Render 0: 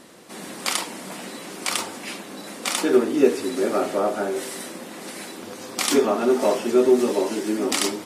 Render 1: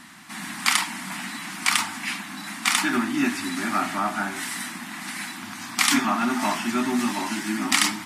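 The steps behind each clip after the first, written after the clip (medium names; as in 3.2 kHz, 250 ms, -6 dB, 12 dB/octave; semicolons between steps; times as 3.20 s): Chebyshev band-stop 250–880 Hz, order 2; peaking EQ 1.9 kHz +6.5 dB 0.99 oct; trim +2.5 dB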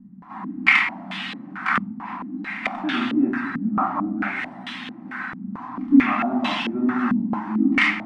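simulated room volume 480 m³, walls furnished, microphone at 2.1 m; step-sequenced low-pass 4.5 Hz 200–3300 Hz; trim -4.5 dB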